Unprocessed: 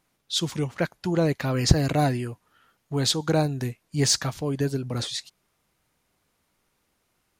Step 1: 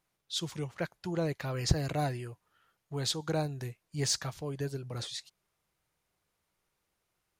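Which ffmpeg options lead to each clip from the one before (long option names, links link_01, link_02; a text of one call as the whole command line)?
ffmpeg -i in.wav -af "equalizer=frequency=250:width_type=o:width=0.35:gain=-9.5,volume=-8.5dB" out.wav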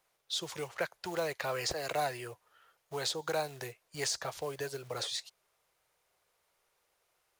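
ffmpeg -i in.wav -filter_complex "[0:a]acrusher=bits=6:mode=log:mix=0:aa=0.000001,acrossover=split=250|810[link_01][link_02][link_03];[link_01]acompressor=threshold=-43dB:ratio=4[link_04];[link_02]acompressor=threshold=-42dB:ratio=4[link_05];[link_03]acompressor=threshold=-38dB:ratio=4[link_06];[link_04][link_05][link_06]amix=inputs=3:normalize=0,lowshelf=frequency=350:width_type=q:width=1.5:gain=-10,volume=5dB" out.wav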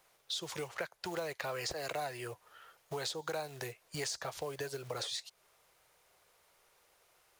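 ffmpeg -i in.wav -af "acompressor=threshold=-47dB:ratio=3,volume=7.5dB" out.wav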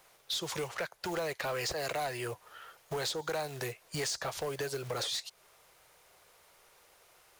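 ffmpeg -i in.wav -af "asoftclip=type=tanh:threshold=-35dB,volume=6.5dB" out.wav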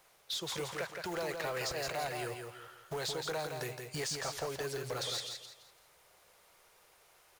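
ffmpeg -i in.wav -af "aecho=1:1:168|336|504|672:0.531|0.17|0.0544|0.0174,volume=-3dB" out.wav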